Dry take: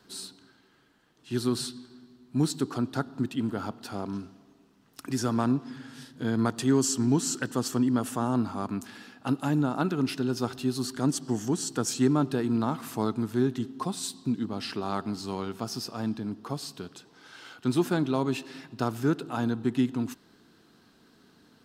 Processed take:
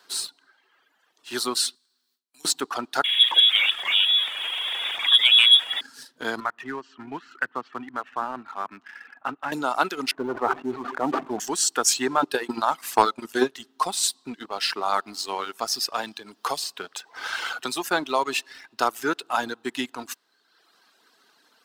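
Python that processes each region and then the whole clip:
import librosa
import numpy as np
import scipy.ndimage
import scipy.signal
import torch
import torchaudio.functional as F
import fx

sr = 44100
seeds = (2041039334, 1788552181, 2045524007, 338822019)

y = fx.chain(x, sr, fx.gate_hold(open_db=-44.0, close_db=-52.0, hold_ms=71.0, range_db=-21, attack_ms=1.4, release_ms=100.0),
    fx.pre_emphasis(coefficient=0.9),
    fx.band_squash(depth_pct=70), at=(1.75, 2.45))
y = fx.chain(y, sr, fx.zero_step(step_db=-30.0),
    fx.hum_notches(base_hz=60, count=10),
    fx.freq_invert(carrier_hz=3600), at=(3.04, 5.81))
y = fx.chain(y, sr, fx.lowpass(hz=2100.0, slope=24),
    fx.peak_eq(hz=520.0, db=-9.5, octaves=2.4),
    fx.band_squash(depth_pct=40), at=(6.4, 9.52))
y = fx.chain(y, sr, fx.lowpass(hz=1200.0, slope=24),
    fx.leveller(passes=1),
    fx.sustainer(db_per_s=42.0), at=(10.11, 11.4))
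y = fx.chain(y, sr, fx.hum_notches(base_hz=60, count=9),
    fx.transient(attack_db=11, sustain_db=-2), at=(12.12, 13.58))
y = fx.chain(y, sr, fx.peak_eq(hz=300.0, db=-4.0, octaves=0.38),
    fx.band_squash(depth_pct=70), at=(15.94, 17.91))
y = fx.dereverb_blind(y, sr, rt60_s=1.1)
y = scipy.signal.sosfilt(scipy.signal.butter(2, 710.0, 'highpass', fs=sr, output='sos'), y)
y = fx.leveller(y, sr, passes=1)
y = y * librosa.db_to_amplitude(8.0)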